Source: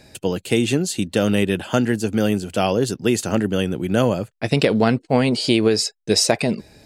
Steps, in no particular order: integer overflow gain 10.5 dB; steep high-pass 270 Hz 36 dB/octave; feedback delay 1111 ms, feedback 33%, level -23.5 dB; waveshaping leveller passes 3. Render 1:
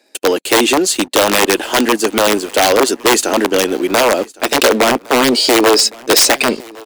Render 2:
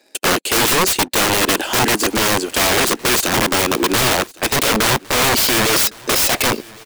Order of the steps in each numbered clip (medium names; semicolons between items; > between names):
integer overflow > steep high-pass > waveshaping leveller > feedback delay; steep high-pass > waveshaping leveller > integer overflow > feedback delay